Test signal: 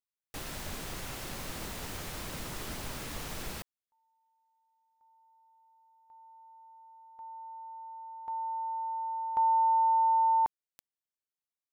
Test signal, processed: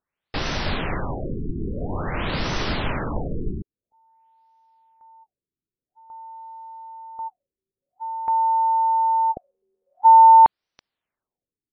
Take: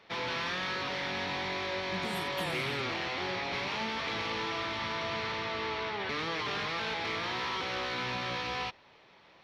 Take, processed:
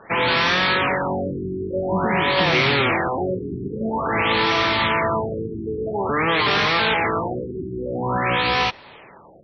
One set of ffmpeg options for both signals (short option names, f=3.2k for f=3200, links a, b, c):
-af "aexciter=amount=11.4:drive=6.8:freq=8.2k,alimiter=level_in=10.5dB:limit=-1dB:release=50:level=0:latency=1,afftfilt=real='re*lt(b*sr/1024,420*pow(6200/420,0.5+0.5*sin(2*PI*0.49*pts/sr)))':imag='im*lt(b*sr/1024,420*pow(6200/420,0.5+0.5*sin(2*PI*0.49*pts/sr)))':win_size=1024:overlap=0.75,volume=5dB"